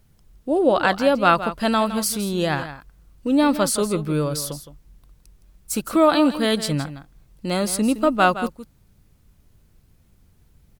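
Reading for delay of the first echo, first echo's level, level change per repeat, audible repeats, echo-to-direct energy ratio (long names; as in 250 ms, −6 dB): 165 ms, −12.5 dB, repeats not evenly spaced, 1, −12.5 dB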